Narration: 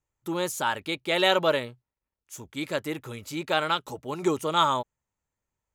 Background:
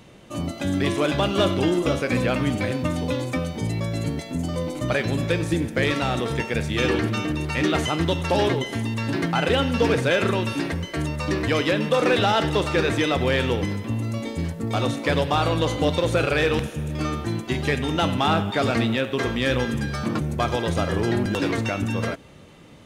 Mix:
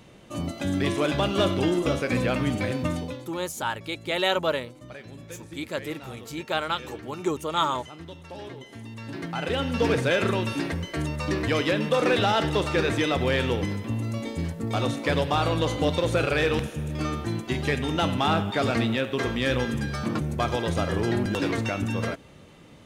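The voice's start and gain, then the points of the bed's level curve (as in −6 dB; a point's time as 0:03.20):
3.00 s, −2.0 dB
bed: 0:02.94 −2.5 dB
0:03.33 −19 dB
0:08.41 −19 dB
0:09.89 −2.5 dB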